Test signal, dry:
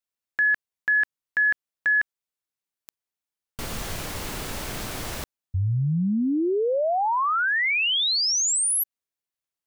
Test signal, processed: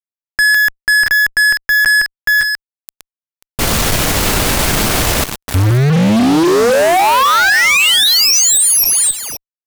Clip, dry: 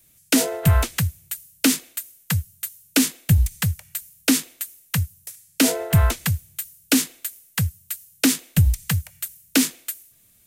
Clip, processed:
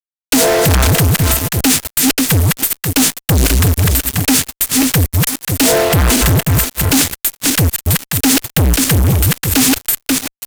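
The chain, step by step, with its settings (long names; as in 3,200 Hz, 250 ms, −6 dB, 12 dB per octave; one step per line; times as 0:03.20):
feedback delay that plays each chunk backwards 268 ms, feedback 40%, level −7.5 dB
fuzz pedal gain 41 dB, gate −35 dBFS
level +4 dB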